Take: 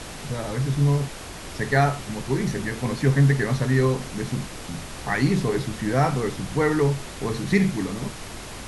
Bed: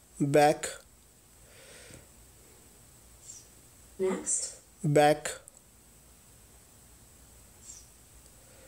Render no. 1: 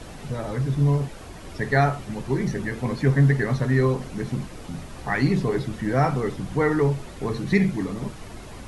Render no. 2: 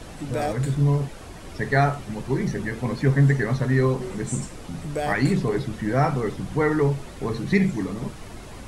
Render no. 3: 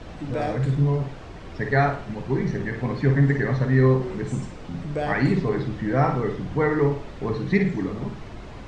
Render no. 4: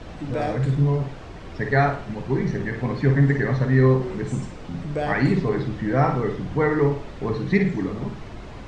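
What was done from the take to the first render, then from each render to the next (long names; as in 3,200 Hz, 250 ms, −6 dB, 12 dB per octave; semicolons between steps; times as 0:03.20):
broadband denoise 9 dB, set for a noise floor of −37 dBFS
mix in bed −5.5 dB
high-frequency loss of the air 140 metres; flutter between parallel walls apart 9.2 metres, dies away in 0.42 s
level +1 dB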